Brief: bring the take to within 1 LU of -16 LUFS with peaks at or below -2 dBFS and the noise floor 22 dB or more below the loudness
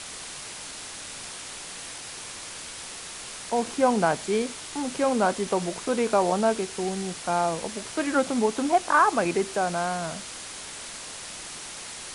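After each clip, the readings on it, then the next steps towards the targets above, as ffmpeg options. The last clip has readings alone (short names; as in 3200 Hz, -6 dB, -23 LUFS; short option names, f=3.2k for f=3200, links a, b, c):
noise floor -39 dBFS; noise floor target -50 dBFS; loudness -27.5 LUFS; peak -8.5 dBFS; loudness target -16.0 LUFS
-> -af "afftdn=nr=11:nf=-39"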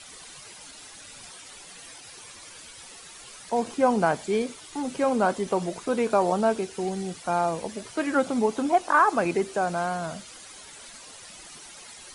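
noise floor -46 dBFS; noise floor target -48 dBFS
-> -af "afftdn=nr=6:nf=-46"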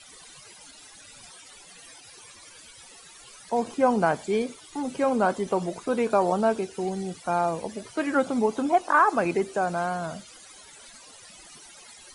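noise floor -49 dBFS; loudness -25.5 LUFS; peak -9.0 dBFS; loudness target -16.0 LUFS
-> -af "volume=9.5dB,alimiter=limit=-2dB:level=0:latency=1"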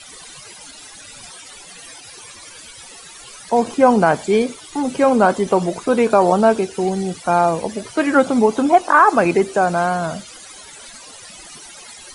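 loudness -16.5 LUFS; peak -2.0 dBFS; noise floor -40 dBFS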